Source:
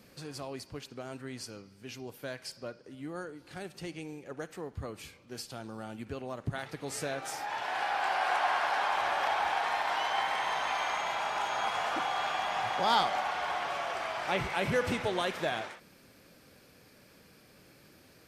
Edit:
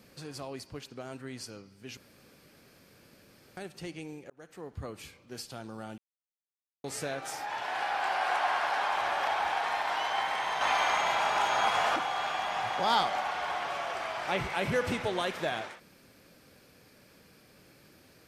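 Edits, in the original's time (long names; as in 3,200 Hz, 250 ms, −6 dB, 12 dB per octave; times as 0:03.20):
0:01.97–0:03.57: fill with room tone
0:04.30–0:04.94: fade in equal-power
0:05.98–0:06.84: silence
0:10.61–0:11.96: clip gain +5 dB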